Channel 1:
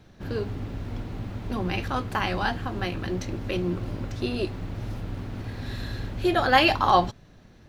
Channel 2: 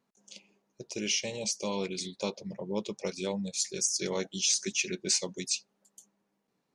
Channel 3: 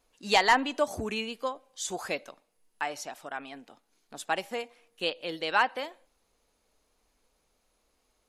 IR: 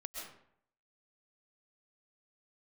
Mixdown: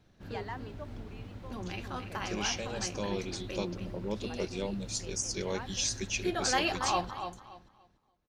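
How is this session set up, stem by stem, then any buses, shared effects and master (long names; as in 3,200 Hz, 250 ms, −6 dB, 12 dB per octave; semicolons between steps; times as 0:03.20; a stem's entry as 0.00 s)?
−11.5 dB, 0.00 s, no send, echo send −8.5 dB, high-shelf EQ 5,200 Hz +8.5 dB
−2.5 dB, 1.35 s, no send, no echo send, no processing
−10.0 dB, 0.00 s, no send, no echo send, low-pass filter 1,800 Hz 6 dB per octave; automatic ducking −8 dB, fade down 0.30 s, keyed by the first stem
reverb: not used
echo: repeating echo 288 ms, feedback 24%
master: high-shelf EQ 9,000 Hz −9.5 dB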